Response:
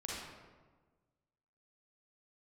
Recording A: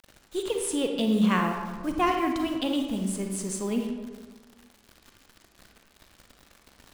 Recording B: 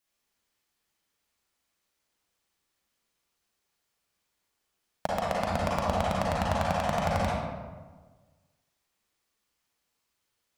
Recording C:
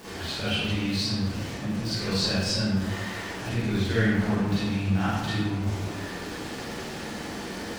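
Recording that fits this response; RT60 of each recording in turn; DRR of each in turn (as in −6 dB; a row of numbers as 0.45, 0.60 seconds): B; 1.4, 1.4, 1.4 seconds; 3.0, −5.5, −11.5 decibels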